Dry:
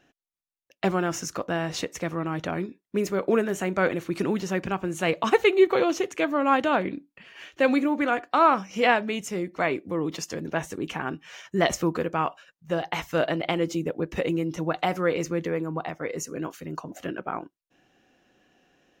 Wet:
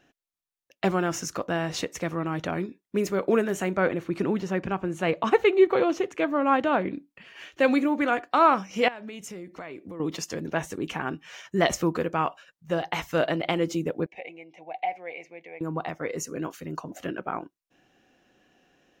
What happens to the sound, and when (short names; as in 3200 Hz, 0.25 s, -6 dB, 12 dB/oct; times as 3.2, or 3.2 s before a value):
3.76–6.94 high shelf 3600 Hz -10.5 dB
8.88–10 compressor, threshold -36 dBFS
14.06–15.61 double band-pass 1300 Hz, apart 1.6 oct